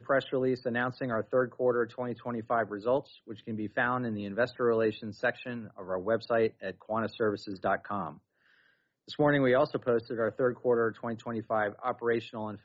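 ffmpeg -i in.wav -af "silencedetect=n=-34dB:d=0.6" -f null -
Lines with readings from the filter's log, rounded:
silence_start: 8.09
silence_end: 9.11 | silence_duration: 1.01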